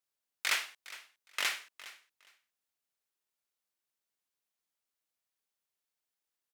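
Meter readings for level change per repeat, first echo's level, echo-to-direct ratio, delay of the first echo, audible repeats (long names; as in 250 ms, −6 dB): −15.0 dB, −17.0 dB, −17.0 dB, 411 ms, 2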